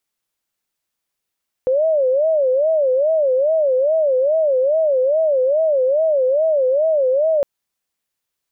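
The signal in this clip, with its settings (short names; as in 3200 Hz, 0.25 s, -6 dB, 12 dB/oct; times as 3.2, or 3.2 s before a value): siren wail 508–646 Hz 2.4/s sine -13 dBFS 5.76 s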